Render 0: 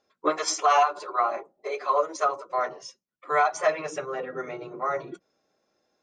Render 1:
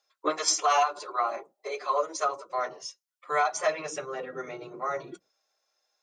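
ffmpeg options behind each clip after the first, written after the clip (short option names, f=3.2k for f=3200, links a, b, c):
-filter_complex "[0:a]acrossover=split=590|3300[a][b][c];[a]agate=range=-27dB:threshold=-54dB:ratio=16:detection=peak[d];[c]acontrast=83[e];[d][b][e]amix=inputs=3:normalize=0,volume=-3.5dB"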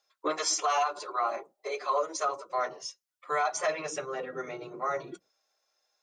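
-af "alimiter=limit=-19dB:level=0:latency=1:release=14"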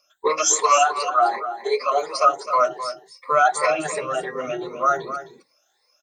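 -af "afftfilt=real='re*pow(10,23/40*sin(2*PI*(0.92*log(max(b,1)*sr/1024/100)/log(2)-(2.7)*(pts-256)/sr)))':imag='im*pow(10,23/40*sin(2*PI*(0.92*log(max(b,1)*sr/1024/100)/log(2)-(2.7)*(pts-256)/sr)))':win_size=1024:overlap=0.75,aecho=1:1:260:0.282,volume=4.5dB"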